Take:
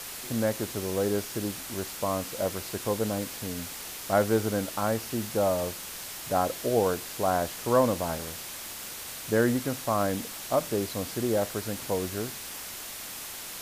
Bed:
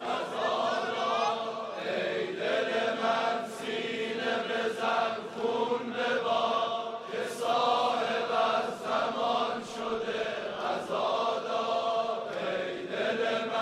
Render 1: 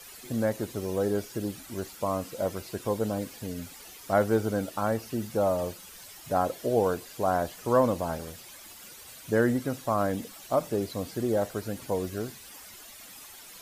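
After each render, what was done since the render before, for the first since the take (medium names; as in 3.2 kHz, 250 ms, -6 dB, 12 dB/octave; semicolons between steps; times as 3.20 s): noise reduction 12 dB, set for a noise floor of -40 dBFS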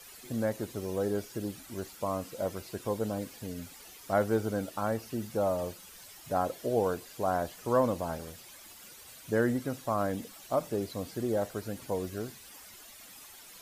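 trim -3.5 dB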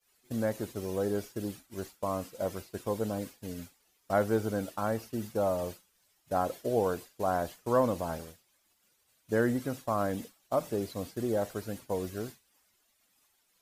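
expander -37 dBFS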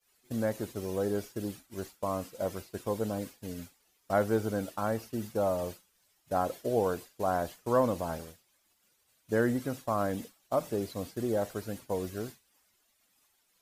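no audible change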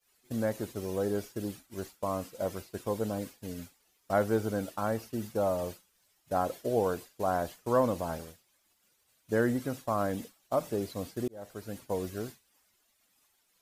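11.28–11.84 s: fade in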